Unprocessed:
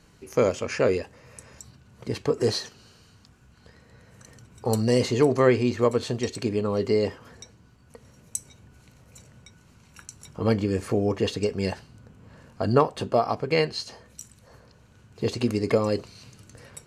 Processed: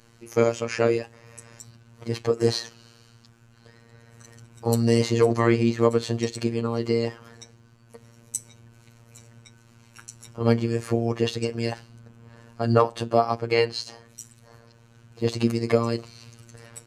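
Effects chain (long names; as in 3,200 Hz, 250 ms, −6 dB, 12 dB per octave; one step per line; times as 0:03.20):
phases set to zero 116 Hz
level +3 dB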